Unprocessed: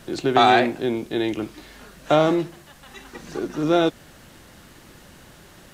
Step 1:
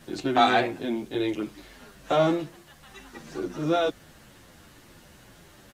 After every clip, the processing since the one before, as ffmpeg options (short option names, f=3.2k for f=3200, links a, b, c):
-filter_complex "[0:a]asplit=2[a][b];[b]adelay=9.4,afreqshift=-2.2[c];[a][c]amix=inputs=2:normalize=1,volume=-1.5dB"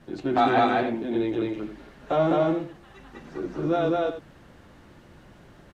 -filter_complex "[0:a]lowpass=f=1.4k:p=1,asplit=2[a][b];[b]aecho=0:1:204.1|291.5:0.891|0.282[c];[a][c]amix=inputs=2:normalize=0"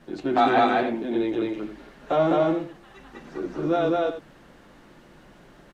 -af "equalizer=f=86:w=1.7:g=-14.5,volume=1.5dB"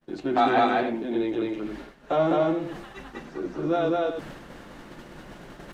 -af "agate=range=-33dB:threshold=-43dB:ratio=3:detection=peak,areverse,acompressor=mode=upward:threshold=-26dB:ratio=2.5,areverse,volume=-1.5dB"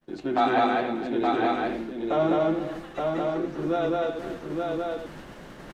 -af "aecho=1:1:272|870:0.237|0.668,volume=-1.5dB"